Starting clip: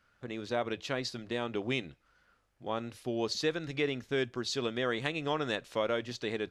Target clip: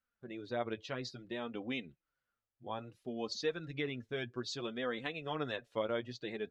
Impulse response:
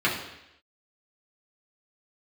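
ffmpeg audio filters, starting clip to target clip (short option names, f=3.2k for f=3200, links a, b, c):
-af "afftdn=nr=15:nf=-46,flanger=delay=3.8:depth=5.2:regen=18:speed=0.6:shape=sinusoidal,volume=-2.5dB"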